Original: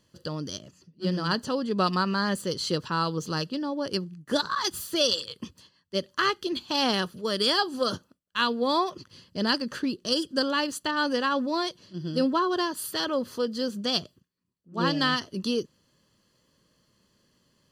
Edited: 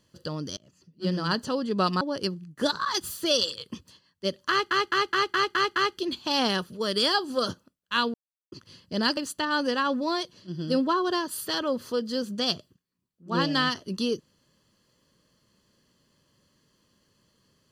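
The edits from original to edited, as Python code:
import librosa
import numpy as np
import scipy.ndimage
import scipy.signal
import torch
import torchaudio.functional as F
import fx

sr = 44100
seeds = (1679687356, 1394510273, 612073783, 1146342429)

y = fx.edit(x, sr, fx.fade_in_from(start_s=0.57, length_s=0.51, curve='qsin', floor_db=-22.0),
    fx.cut(start_s=2.01, length_s=1.7),
    fx.stutter(start_s=6.2, slice_s=0.21, count=7),
    fx.silence(start_s=8.58, length_s=0.38),
    fx.cut(start_s=9.61, length_s=1.02), tone=tone)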